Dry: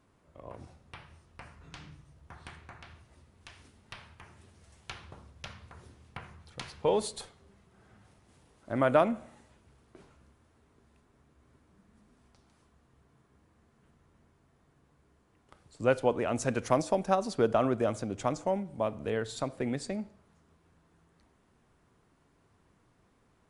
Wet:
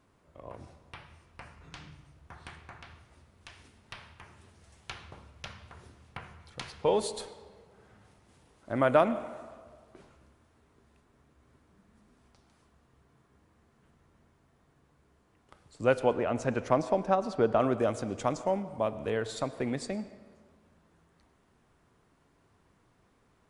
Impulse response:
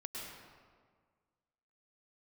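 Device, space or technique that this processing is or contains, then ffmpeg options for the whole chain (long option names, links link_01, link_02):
filtered reverb send: -filter_complex "[0:a]asettb=1/sr,asplit=3[link_01][link_02][link_03];[link_01]atrim=end=16.134[link_04];[link_02]atrim=start=16.13:end=17.6,asetpts=PTS-STARTPTS,afade=type=in:duration=0.004:curve=qsin,afade=type=out:start_time=1.466:duration=0.004:curve=qsin,lowpass=frequency=2400:poles=1[link_05];[link_03]atrim=start=17.596[link_06];[link_04][link_05]acrossfade=duration=0.004:curve1=hsin:curve2=qsin[link_07];[link_07][link_06]acrossfade=duration=0.004:curve1=qsin:curve2=hsin,asplit=2[link_08][link_09];[link_09]highpass=290,lowpass=8200[link_10];[1:a]atrim=start_sample=2205[link_11];[link_10][link_11]afir=irnorm=-1:irlink=0,volume=-11dB[link_12];[link_08][link_12]amix=inputs=2:normalize=0"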